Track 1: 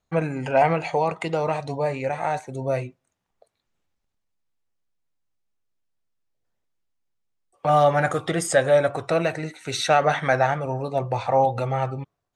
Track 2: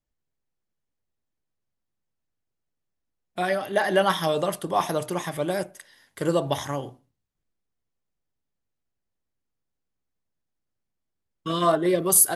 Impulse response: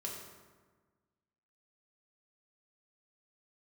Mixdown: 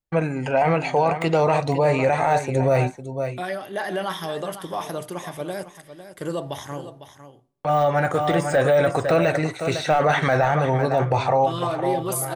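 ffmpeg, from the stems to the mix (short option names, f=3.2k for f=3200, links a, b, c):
-filter_complex "[0:a]dynaudnorm=f=460:g=5:m=9.5dB,agate=range=-33dB:threshold=-35dB:ratio=3:detection=peak,deesser=0.75,volume=2dB,asplit=2[a][b];[b]volume=-12dB[c];[1:a]alimiter=limit=-14dB:level=0:latency=1:release=19,volume=-4dB,asplit=4[d][e][f][g];[e]volume=-22dB[h];[f]volume=-11.5dB[i];[g]apad=whole_len=544890[j];[a][j]sidechaincompress=threshold=-46dB:ratio=3:attack=16:release=1480[k];[2:a]atrim=start_sample=2205[l];[h][l]afir=irnorm=-1:irlink=0[m];[c][i]amix=inputs=2:normalize=0,aecho=0:1:503:1[n];[k][d][m][n]amix=inputs=4:normalize=0,alimiter=limit=-10.5dB:level=0:latency=1:release=13"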